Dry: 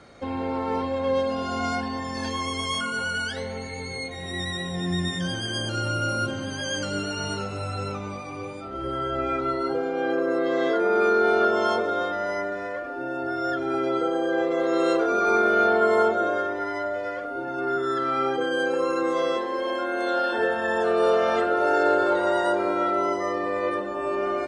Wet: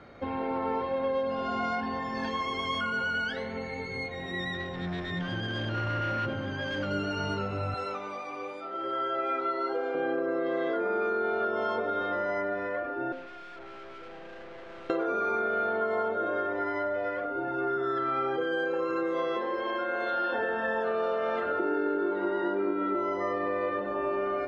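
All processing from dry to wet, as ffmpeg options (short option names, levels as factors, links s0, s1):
-filter_complex "[0:a]asettb=1/sr,asplit=3[s0][s1][s2];[s0]atrim=end=4.544[s3];[s1]atrim=start=4.54:end=6.91,asetpts=PTS-STARTPTS,afade=t=in:d=0.004:c=qsin,afade=t=out:st=2.366:d=0.004:c=qsin,acrossover=split=6200[s4][s5];[s5]acompressor=threshold=0.00355:ratio=4:attack=1:release=60[s6];[s4][s6]amix=inputs=2:normalize=0,highshelf=f=6000:g=-10.5,asoftclip=type=hard:threshold=0.0473[s7];[s2]atrim=start=6.906[s8];[s3][s7]acrossfade=d=0.004:c1=hsin:c2=qsin[s9];[s9][s8]acrossfade=d=0.004:c1=qsin:c2=hsin,asettb=1/sr,asplit=3[s10][s11][s12];[s10]atrim=end=7.744[s13];[s11]atrim=start=7.74:end=9.95,asetpts=PTS-STARTPTS,afade=t=in:d=0.004:c=qsin,afade=t=out:st=2.206:d=0.004:c=qsin,highpass=420,aemphasis=mode=production:type=cd,bandreject=f=2500:w=16[s14];[s12]atrim=start=9.946[s15];[s13][s14]acrossfade=d=0.004:c1=hsin:c2=qsin[s16];[s16][s15]acrossfade=d=0.004:c1=qsin:c2=hsin,asettb=1/sr,asplit=3[s17][s18][s19];[s17]atrim=end=13.124[s20];[s18]atrim=start=13.12:end=14.9,asetpts=PTS-STARTPTS,afade=t=in:d=0.004:c=qsin,afade=t=out:st=1.776:d=0.004:c=qsin,highpass=460,aeval=exprs='(tanh(158*val(0)+0.55)-tanh(0.55))/158':c=same[s21];[s19]atrim=start=14.896[s22];[s20][s21]acrossfade=d=0.004:c1=hsin:c2=qsin[s23];[s23][s22]acrossfade=d=0.004:c1=qsin:c2=hsin,asettb=1/sr,asplit=3[s24][s25][s26];[s24]atrim=end=21.594[s27];[s25]atrim=start=21.59:end=22.95,asetpts=PTS-STARTPTS,afade=t=in:d=0.004:c=qsin,afade=t=out:st=1.356:d=0.004:c=qsin,highpass=200,lowpass=3900,lowshelf=f=440:t=q:w=3:g=7[s28];[s26]atrim=start=22.946[s29];[s27][s28]acrossfade=d=0.004:c1=hsin:c2=qsin[s30];[s30][s29]acrossfade=d=0.004:c1=qsin:c2=hsin,lowpass=2800,bandreject=f=88:t=h:w=4,bandreject=f=176:t=h:w=4,bandreject=f=264:t=h:w=4,bandreject=f=352:t=h:w=4,bandreject=f=440:t=h:w=4,bandreject=f=528:t=h:w=4,bandreject=f=616:t=h:w=4,bandreject=f=704:t=h:w=4,bandreject=f=792:t=h:w=4,bandreject=f=880:t=h:w=4,bandreject=f=968:t=h:w=4,bandreject=f=1056:t=h:w=4,bandreject=f=1144:t=h:w=4,bandreject=f=1232:t=h:w=4,acompressor=threshold=0.0501:ratio=6"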